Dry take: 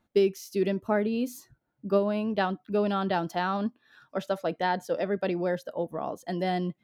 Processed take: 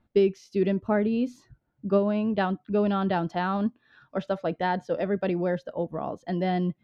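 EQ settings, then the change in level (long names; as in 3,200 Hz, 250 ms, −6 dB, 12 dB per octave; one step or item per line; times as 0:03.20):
low-pass filter 3,800 Hz 12 dB per octave
low-shelf EQ 150 Hz +11 dB
0.0 dB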